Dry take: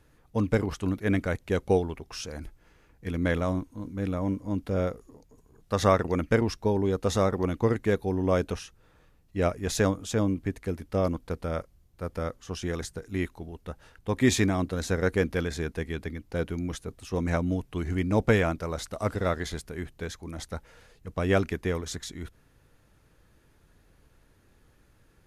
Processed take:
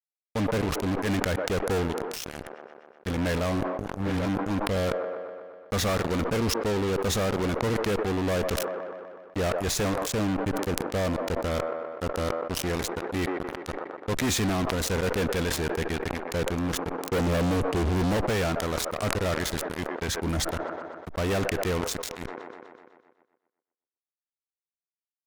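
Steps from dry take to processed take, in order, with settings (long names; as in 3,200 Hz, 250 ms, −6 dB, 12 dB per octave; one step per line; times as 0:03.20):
0:03.67–0:04.26: all-pass dispersion highs, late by 115 ms, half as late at 390 Hz
0:17.10–0:18.17: low shelf with overshoot 690 Hz +9 dB, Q 3
0:20.08–0:20.52: leveller curve on the samples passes 3
fuzz pedal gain 35 dB, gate −34 dBFS
delay with a band-pass on its return 124 ms, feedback 47%, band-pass 750 Hz, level −17 dB
level that may fall only so fast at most 29 dB per second
level −10 dB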